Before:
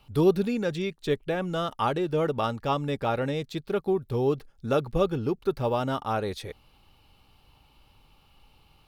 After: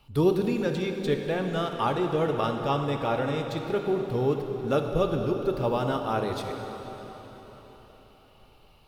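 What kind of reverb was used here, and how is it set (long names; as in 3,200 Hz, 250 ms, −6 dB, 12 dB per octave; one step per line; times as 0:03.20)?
dense smooth reverb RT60 4.6 s, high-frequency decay 0.85×, DRR 3.5 dB
level −1 dB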